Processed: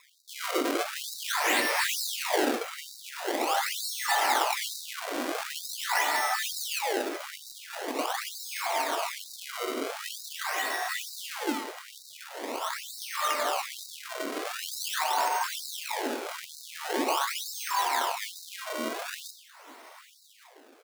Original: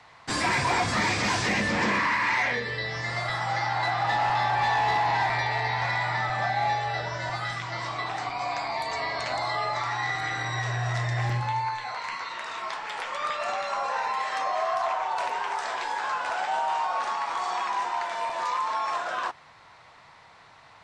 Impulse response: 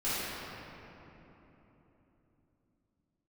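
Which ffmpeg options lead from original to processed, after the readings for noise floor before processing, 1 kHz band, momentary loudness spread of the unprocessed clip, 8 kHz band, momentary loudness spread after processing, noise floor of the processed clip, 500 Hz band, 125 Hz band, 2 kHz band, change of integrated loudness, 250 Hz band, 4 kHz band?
-53 dBFS, -5.5 dB, 7 LU, +7.0 dB, 14 LU, -55 dBFS, -0.5 dB, under -35 dB, -4.5 dB, -3.0 dB, 0.0 dB, +1.5 dB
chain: -filter_complex "[0:a]bandreject=f=209.9:t=h:w=4,bandreject=f=419.8:t=h:w=4,bandreject=f=629.7:t=h:w=4,bandreject=f=839.6:t=h:w=4,bandreject=f=1049.5:t=h:w=4,bandreject=f=1259.4:t=h:w=4,bandreject=f=1469.3:t=h:w=4,bandreject=f=1679.2:t=h:w=4,acrusher=samples=29:mix=1:aa=0.000001:lfo=1:lforange=46.4:lforate=0.44,aecho=1:1:1166:0.1,asplit=2[s0][s1];[1:a]atrim=start_sample=2205,atrim=end_sample=6174[s2];[s1][s2]afir=irnorm=-1:irlink=0,volume=0.237[s3];[s0][s3]amix=inputs=2:normalize=0,afftfilt=real='re*gte(b*sr/1024,220*pow(3800/220,0.5+0.5*sin(2*PI*1.1*pts/sr)))':imag='im*gte(b*sr/1024,220*pow(3800/220,0.5+0.5*sin(2*PI*1.1*pts/sr)))':win_size=1024:overlap=0.75"

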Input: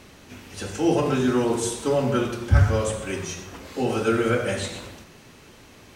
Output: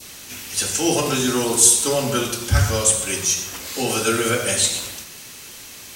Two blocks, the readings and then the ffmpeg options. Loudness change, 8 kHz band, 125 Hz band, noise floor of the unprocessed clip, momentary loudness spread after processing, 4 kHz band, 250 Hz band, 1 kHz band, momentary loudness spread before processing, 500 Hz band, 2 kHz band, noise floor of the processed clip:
+5.0 dB, +18.5 dB, -1.0 dB, -49 dBFS, 22 LU, +12.5 dB, -0.5 dB, +2.5 dB, 15 LU, +0.5 dB, +5.0 dB, -39 dBFS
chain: -af "adynamicequalizer=threshold=0.00708:dfrequency=1800:dqfactor=1.2:tfrequency=1800:tqfactor=1.2:attack=5:release=100:ratio=0.375:range=2.5:mode=cutabove:tftype=bell,crystalizer=i=9:c=0,volume=0.891"

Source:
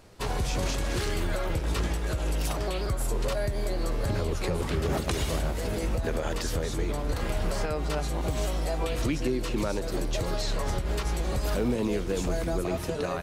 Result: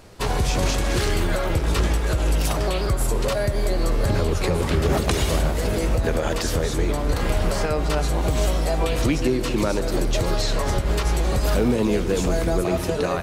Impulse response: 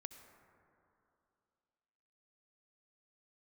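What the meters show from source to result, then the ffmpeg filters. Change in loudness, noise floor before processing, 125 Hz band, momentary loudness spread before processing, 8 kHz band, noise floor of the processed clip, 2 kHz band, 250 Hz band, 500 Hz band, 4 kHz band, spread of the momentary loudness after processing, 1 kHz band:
+7.0 dB, -32 dBFS, +7.5 dB, 2 LU, +7.0 dB, -25 dBFS, +7.0 dB, +7.0 dB, +7.0 dB, +7.0 dB, 3 LU, +7.0 dB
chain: -filter_complex "[0:a]asplit=2[s0][s1];[1:a]atrim=start_sample=2205[s2];[s1][s2]afir=irnorm=-1:irlink=0,volume=2.37[s3];[s0][s3]amix=inputs=2:normalize=0"

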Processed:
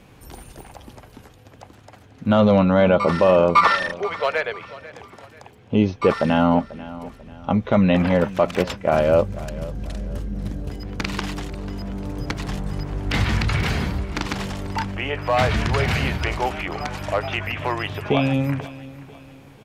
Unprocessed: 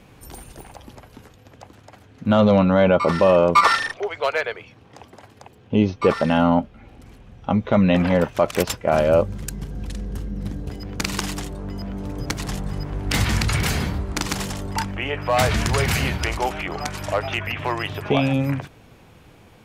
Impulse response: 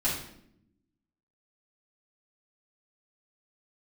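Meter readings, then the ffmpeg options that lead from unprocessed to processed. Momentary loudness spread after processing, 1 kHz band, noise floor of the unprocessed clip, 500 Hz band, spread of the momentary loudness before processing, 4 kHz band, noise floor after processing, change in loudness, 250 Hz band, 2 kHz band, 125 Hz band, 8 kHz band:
16 LU, 0.0 dB, -50 dBFS, 0.0 dB, 15 LU, -2.0 dB, -48 dBFS, 0.0 dB, 0.0 dB, 0.0 dB, 0.0 dB, -9.5 dB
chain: -filter_complex "[0:a]acrossover=split=4600[s0][s1];[s1]acompressor=threshold=0.00562:ratio=4:attack=1:release=60[s2];[s0][s2]amix=inputs=2:normalize=0,aecho=1:1:491|982|1473:0.133|0.052|0.0203"

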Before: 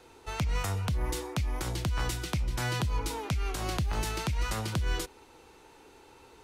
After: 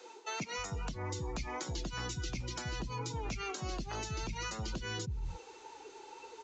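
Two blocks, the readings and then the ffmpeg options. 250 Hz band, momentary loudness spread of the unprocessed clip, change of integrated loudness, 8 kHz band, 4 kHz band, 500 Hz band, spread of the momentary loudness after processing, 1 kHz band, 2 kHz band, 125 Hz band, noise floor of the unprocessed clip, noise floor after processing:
-6.0 dB, 3 LU, -7.0 dB, -3.5 dB, -4.5 dB, -4.5 dB, 12 LU, -4.5 dB, -4.5 dB, -9.0 dB, -56 dBFS, -54 dBFS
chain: -filter_complex "[0:a]aemphasis=mode=production:type=bsi,aresample=16000,asoftclip=type=hard:threshold=0.0335,aresample=44100,acrossover=split=330[s0][s1];[s1]acompressor=threshold=0.00891:ratio=10[s2];[s0][s2]amix=inputs=2:normalize=0,acrossover=split=190[s3][s4];[s3]adelay=310[s5];[s5][s4]amix=inputs=2:normalize=0,afftdn=nr=14:nf=-46,areverse,acompressor=threshold=0.00398:ratio=12,areverse,volume=4.47"

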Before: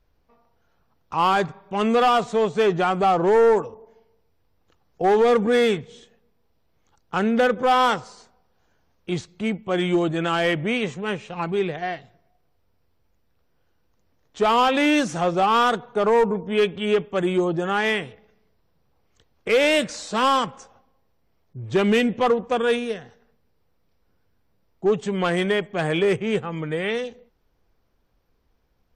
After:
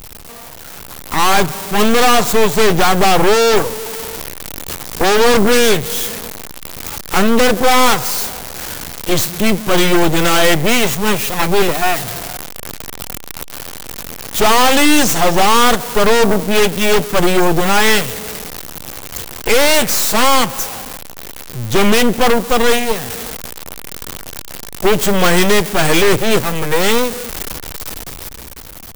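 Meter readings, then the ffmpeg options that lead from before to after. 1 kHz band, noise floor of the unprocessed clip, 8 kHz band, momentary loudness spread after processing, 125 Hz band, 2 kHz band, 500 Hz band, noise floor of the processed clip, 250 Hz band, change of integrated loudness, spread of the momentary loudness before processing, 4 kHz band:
+7.0 dB, -66 dBFS, +22.5 dB, 17 LU, +9.0 dB, +10.5 dB, +6.5 dB, -33 dBFS, +7.5 dB, +8.0 dB, 11 LU, +13.0 dB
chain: -af "aeval=exprs='val(0)+0.5*0.0237*sgn(val(0))':c=same,aemphasis=mode=production:type=50kf,dynaudnorm=f=160:g=13:m=3.16,aeval=exprs='0.841*(cos(1*acos(clip(val(0)/0.841,-1,1)))-cos(1*PI/2))+0.15*(cos(5*acos(clip(val(0)/0.841,-1,1)))-cos(5*PI/2))+0.335*(cos(8*acos(clip(val(0)/0.841,-1,1)))-cos(8*PI/2))':c=same,volume=0.596"

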